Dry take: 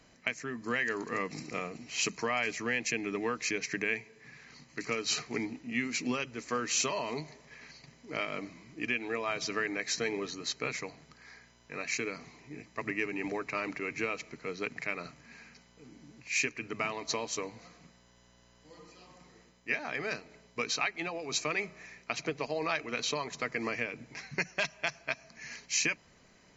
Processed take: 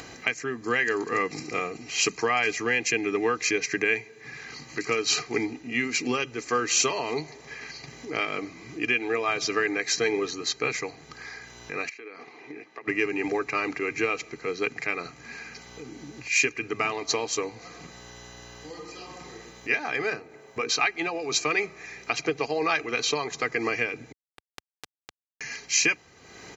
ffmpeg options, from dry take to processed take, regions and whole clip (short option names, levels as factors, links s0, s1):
-filter_complex "[0:a]asettb=1/sr,asplit=3[s0][s1][s2];[s0]atrim=end=11.894[s3];[s1]atrim=start=11.89:end=12.88,asetpts=PTS-STARTPTS,afade=t=in:d=0.004:c=qsin,afade=t=out:st=0.986:d=0.004:c=qsin,agate=range=0.355:threshold=0.00316:ratio=16:release=100:detection=peak,highpass=320,lowpass=3200,acompressor=threshold=0.00316:ratio=5:attack=3.2:release=140:knee=1:detection=peak[s4];[s2]atrim=start=12.876[s5];[s3][s4]acrossfade=d=0.004:c1=hsin:c2=qsin[s6];[s6][s5]acrossfade=d=0.004:c1=qsin:c2=hsin,asettb=1/sr,asplit=3[s7][s8][s9];[s7]atrim=end=20.104[s10];[s8]atrim=start=20.1:end=20.69,asetpts=PTS-STARTPTS,afade=t=in:d=0.004:c=qsin,afade=t=out:st=0.586:d=0.004:c=qsin,equalizer=f=4700:t=o:w=1.9:g=-10.5,bandreject=f=60:t=h:w=6,bandreject=f=120:t=h:w=6,bandreject=f=180:t=h:w=6,bandreject=f=240:t=h:w=6,bandreject=f=300:t=h:w=6,bandreject=f=360:t=h:w=6,bandreject=f=420:t=h:w=6,bandreject=f=480:t=h:w=6[s11];[s9]atrim=start=20.686[s12];[s10][s11]acrossfade=d=0.004:c1=hsin:c2=qsin[s13];[s13][s12]acrossfade=d=0.004:c1=qsin:c2=hsin,asettb=1/sr,asplit=3[s14][s15][s16];[s14]atrim=end=24.124[s17];[s15]atrim=start=24.12:end=25.41,asetpts=PTS-STARTPTS,afade=t=in:d=0.004:c=qsin,afade=t=out:st=1.286:d=0.004:c=qsin,highshelf=f=4500:g=-11,acompressor=threshold=0.01:ratio=6:attack=3.2:release=140:knee=1:detection=peak,acrusher=bits=3:mix=0:aa=0.5[s18];[s16]atrim=start=25.406[s19];[s17][s18]acrossfade=d=0.004:c1=hsin:c2=qsin[s20];[s20][s19]acrossfade=d=0.004:c1=qsin:c2=hsin,highpass=77,aecho=1:1:2.5:0.51,acompressor=mode=upward:threshold=0.0112:ratio=2.5,volume=2"